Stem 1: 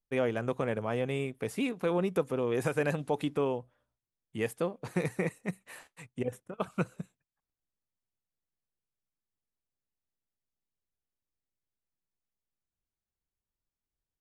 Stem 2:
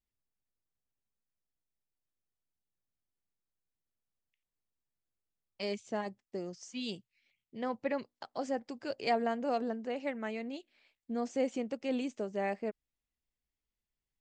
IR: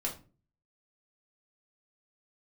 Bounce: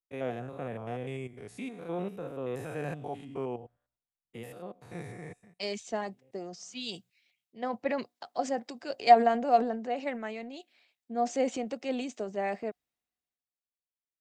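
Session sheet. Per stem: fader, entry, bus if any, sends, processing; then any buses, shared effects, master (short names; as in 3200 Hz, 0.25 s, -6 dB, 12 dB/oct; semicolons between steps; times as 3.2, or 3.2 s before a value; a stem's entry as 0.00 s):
5.21 s -4 dB -> 5.98 s -11 dB, 0.00 s, no send, stepped spectrum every 0.1 s; vibrato 0.52 Hz 96 cents; auto duck -15 dB, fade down 0.20 s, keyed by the second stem
+1.0 dB, 0.00 s, no send, HPF 47 Hz; low shelf 130 Hz -10.5 dB; transient shaper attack +2 dB, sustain +7 dB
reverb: off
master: small resonant body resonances 720/3800 Hz, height 11 dB, ringing for 95 ms; three-band expander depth 40%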